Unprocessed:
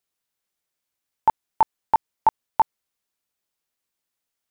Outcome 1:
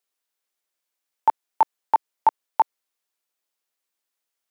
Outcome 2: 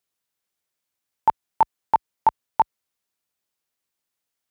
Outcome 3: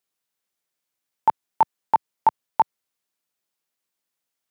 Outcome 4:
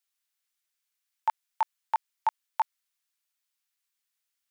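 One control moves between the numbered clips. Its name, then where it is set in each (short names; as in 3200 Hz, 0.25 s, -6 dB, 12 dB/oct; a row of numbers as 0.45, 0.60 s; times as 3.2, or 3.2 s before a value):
HPF, cutoff: 330, 44, 110, 1400 Hz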